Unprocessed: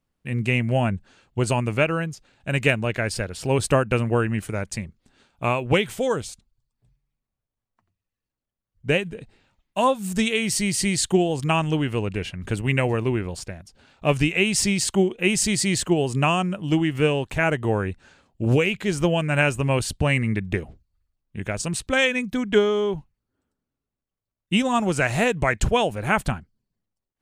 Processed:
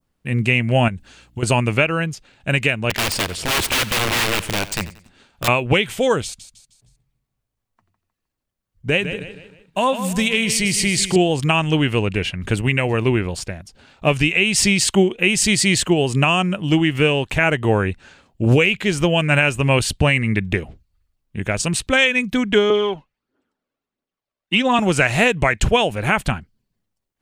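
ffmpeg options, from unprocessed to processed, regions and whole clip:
-filter_complex "[0:a]asettb=1/sr,asplit=3[a][b][c];[a]atrim=end=0.884[d];[b]atrim=start=0.88:end=1.43,asetpts=PTS-STARTPTS,afade=t=in:d=0.004:c=qsin,afade=t=out:st=0.546:d=0.004:c=qsin,aemphasis=mode=production:type=cd,acompressor=threshold=-30dB:ratio=5:attack=3.2:release=140:knee=1:detection=peak,aeval=exprs='val(0)+0.001*(sin(2*PI*60*n/s)+sin(2*PI*2*60*n/s)/2+sin(2*PI*3*60*n/s)/3+sin(2*PI*4*60*n/s)/4+sin(2*PI*5*60*n/s)/5)':c=same[e];[c]atrim=start=1.426[f];[d][e]acrossfade=d=0.004:c1=hsin:c2=qsin[g];[g][f]acrossfade=d=0.004:c1=qsin:c2=hsin,asettb=1/sr,asplit=3[h][i][j];[h]atrim=end=2.904[k];[i]atrim=start=2.9:end=5.48,asetpts=PTS-STARTPTS,afade=t=in:d=0.004:c=qsin,afade=t=out:st=2.576:d=0.004:c=qsin,aeval=exprs='(mod(11.9*val(0)+1,2)-1)/11.9':c=same,aecho=1:1:91|182|273:0.15|0.0539|0.0194,atrim=end_sample=113778[l];[j]atrim=start=5.476[m];[k][l]acrossfade=d=0.004:c1=hsin:c2=qsin[n];[n][m]acrossfade=d=0.004:c1=qsin:c2=hsin,asettb=1/sr,asplit=3[o][p][q];[o]atrim=end=6.244[r];[p]atrim=start=6.24:end=11.16,asetpts=PTS-STARTPTS,afade=t=in:d=0.004:c=qsin,afade=t=out:st=4.916:d=0.004:c=qsin,acompressor=threshold=-23dB:ratio=2:attack=3.2:release=140:knee=1:detection=peak,aecho=1:1:155|310|465|620:0.282|0.121|0.0521|0.0224,atrim=end_sample=216972[s];[q]atrim=start=11.156[t];[r][s]acrossfade=d=0.004:c1=hsin:c2=qsin[u];[u][t]acrossfade=d=0.004:c1=qsin:c2=hsin,asettb=1/sr,asplit=3[v][w][x];[v]atrim=end=22.704[y];[w]atrim=start=22.7:end=24.79,asetpts=PTS-STARTPTS,afade=t=in:d=0.004:c=qsin,afade=t=out:st=2.086:d=0.004:c=qsin,acrossover=split=220 5000:gain=0.1 1 0.224[z][aa][ab];[z][aa][ab]amix=inputs=3:normalize=0,aphaser=in_gain=1:out_gain=1:delay=2:decay=0.43:speed=1.5:type=triangular[ac];[x]atrim=start=24.786[ad];[y][ac]acrossfade=d=0.004:c1=hsin:c2=qsin[ae];[ae][ad]acrossfade=d=0.004:c1=qsin:c2=hsin,adynamicequalizer=threshold=0.0126:dfrequency=2700:dqfactor=1.1:tfrequency=2700:tqfactor=1.1:attack=5:release=100:ratio=0.375:range=3:mode=boostabove:tftype=bell,alimiter=limit=-10dB:level=0:latency=1:release=278,volume=5.5dB"

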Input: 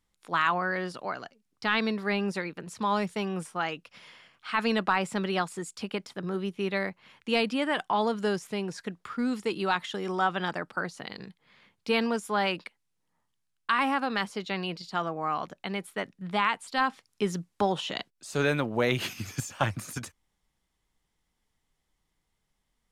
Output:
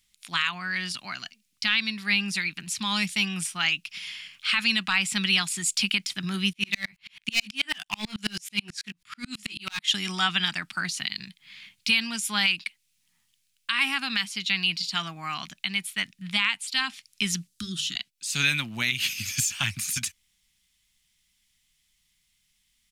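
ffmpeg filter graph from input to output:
-filter_complex "[0:a]asettb=1/sr,asplit=3[a][b][c];[a]atrim=end=6.534[d];[b]atrim=start=6.53:end=9.88,asetpts=PTS-STARTPTS,afade=t=in:d=0.004:c=qsin,afade=t=out:st=3.346:d=0.004:c=qsin,asoftclip=type=hard:threshold=-21.5dB,asplit=2[e][f];[f]adelay=19,volume=-6dB[g];[e][g]amix=inputs=2:normalize=0,atrim=end_sample=147735,aeval=exprs='val(0)*pow(10,-38*if(lt(mod(-9.2*n/s,1),2*abs(-9.2)/1000),1-mod(-9.2*n/s,1)/(2*abs(-9.2)/1000),(mod(-9.2*n/s,1)-2*abs(-9.2)/1000)/(1-2*abs(-9.2)/1000))/20)':c=same[h];[c]atrim=start=9.876[i];[d][h]acrossfade=d=0.004:c1=hsin:c2=qsin[j];[j][i]acrossfade=d=0.004:c1=qsin:c2=hsin,asettb=1/sr,asplit=3[k][l][m];[k]atrim=end=17.474[n];[l]atrim=start=17.47:end=17.96,asetpts=PTS-STARTPTS,afade=t=in:d=0.004:c=qsin,afade=t=out:st=0.486:d=0.004:c=qsin,asuperstop=centerf=670:order=20:qfactor=0.84,equalizer=f=2.3k:t=o:w=1.1:g=-15,bandreject=f=50:t=h:w=6,bandreject=f=100:t=h:w=6,bandreject=f=150:t=h:w=6,bandreject=f=200:t=h:w=6[o];[m]atrim=start=17.956[p];[n][o]acrossfade=d=0.004:c1=hsin:c2=qsin[q];[q][p]acrossfade=d=0.004:c1=qsin:c2=hsin,firequalizer=gain_entry='entry(210,0);entry(480,-24);entry(690,-11);entry(2400,14)':delay=0.05:min_phase=1,dynaudnorm=f=220:g=31:m=11.5dB,alimiter=limit=-10.5dB:level=0:latency=1:release=436"

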